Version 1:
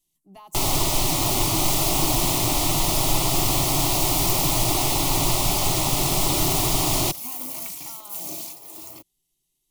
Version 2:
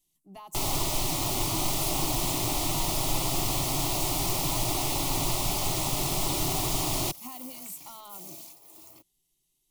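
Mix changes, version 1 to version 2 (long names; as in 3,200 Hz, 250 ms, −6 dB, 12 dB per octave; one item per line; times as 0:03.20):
first sound −6.5 dB
second sound −11.0 dB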